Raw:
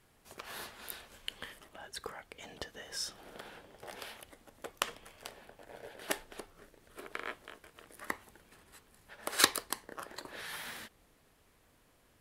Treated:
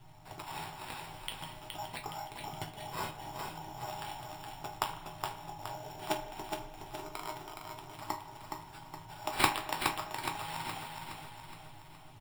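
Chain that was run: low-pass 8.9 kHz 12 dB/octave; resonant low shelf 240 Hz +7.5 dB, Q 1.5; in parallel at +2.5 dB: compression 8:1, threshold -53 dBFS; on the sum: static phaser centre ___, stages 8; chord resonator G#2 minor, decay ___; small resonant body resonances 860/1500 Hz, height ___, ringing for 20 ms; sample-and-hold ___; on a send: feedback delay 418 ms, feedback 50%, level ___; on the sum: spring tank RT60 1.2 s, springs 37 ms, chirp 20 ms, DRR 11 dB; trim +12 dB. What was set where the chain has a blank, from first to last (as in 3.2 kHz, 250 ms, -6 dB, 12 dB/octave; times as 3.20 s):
330 Hz, 0.21 s, 11 dB, 7×, -5 dB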